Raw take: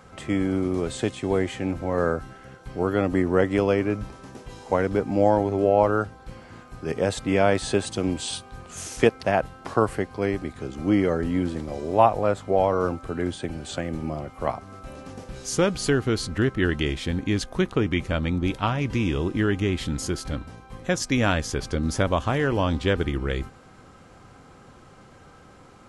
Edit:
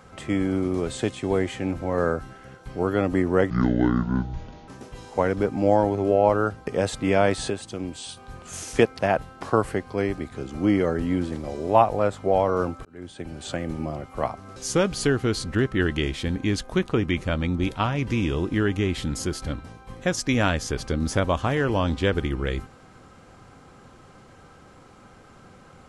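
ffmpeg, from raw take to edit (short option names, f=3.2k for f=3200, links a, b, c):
-filter_complex "[0:a]asplit=8[a][b][c][d][e][f][g][h];[a]atrim=end=3.504[i];[b]atrim=start=3.5:end=4.22,asetpts=PTS-STARTPTS,asetrate=26901,aresample=44100,atrim=end_sample=52052,asetpts=PTS-STARTPTS[j];[c]atrim=start=4.216:end=6.212[k];[d]atrim=start=6.908:end=7.742[l];[e]atrim=start=7.738:end=8.412,asetpts=PTS-STARTPTS,volume=-6.5dB[m];[f]atrim=start=8.408:end=13.09,asetpts=PTS-STARTPTS,afade=t=out:st=4.678:d=0.004:c=hsin[n];[g]atrim=start=13.09:end=14.802,asetpts=PTS-STARTPTS,afade=t=in:d=0.66[o];[h]atrim=start=15.388[p];[i][j]acrossfade=d=0.004:c1=hsin:c2=hsin[q];[q][k]acrossfade=d=0.004:c1=hsin:c2=hsin[r];[r][l]acrossfade=d=0.004:c1=hsin:c2=hsin[s];[s][m]acrossfade=d=0.004:c1=hsin:c2=hsin[t];[n][o]concat=n=2:v=0:a=1[u];[t][u]acrossfade=d=0.004:c1=hsin:c2=hsin[v];[v][p]acrossfade=d=0.004:c1=hsin:c2=hsin"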